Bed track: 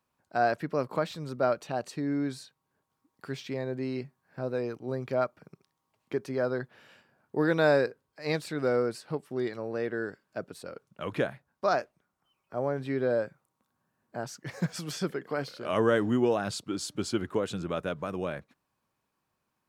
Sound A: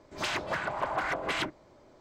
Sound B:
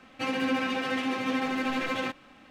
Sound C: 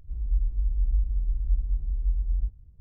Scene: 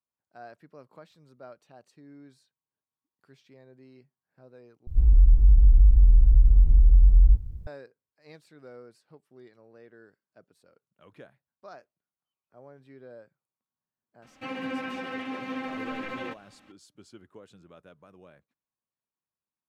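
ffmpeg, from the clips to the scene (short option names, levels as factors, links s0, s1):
-filter_complex "[0:a]volume=0.1[s0];[3:a]alimiter=level_in=13.3:limit=0.891:release=50:level=0:latency=1[s1];[2:a]acrossover=split=3100[s2][s3];[s3]acompressor=threshold=0.00282:ratio=4:attack=1:release=60[s4];[s2][s4]amix=inputs=2:normalize=0[s5];[s0]asplit=2[s6][s7];[s6]atrim=end=4.874[s8];[s1]atrim=end=2.8,asetpts=PTS-STARTPTS,volume=0.355[s9];[s7]atrim=start=7.666[s10];[s5]atrim=end=2.5,asetpts=PTS-STARTPTS,volume=0.531,afade=t=in:d=0.004:c=hsin,afade=t=out:st=2.496:d=0.004:c=hsin,adelay=14220[s11];[s8][s9]acrossfade=d=0.004:c1=hsin:c2=hsin[s12];[s12][s10]acrossfade=d=0.004:c1=hsin:c2=hsin[s13];[s13][s11]amix=inputs=2:normalize=0"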